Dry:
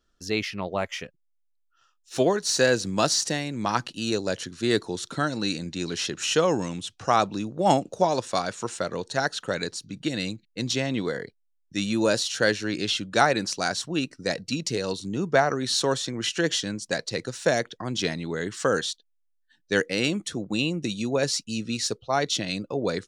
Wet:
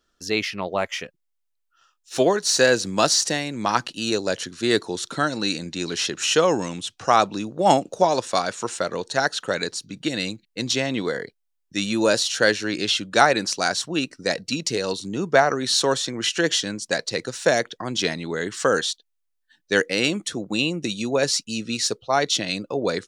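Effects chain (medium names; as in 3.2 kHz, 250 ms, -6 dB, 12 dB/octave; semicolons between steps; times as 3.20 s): bass shelf 180 Hz -9 dB; trim +4.5 dB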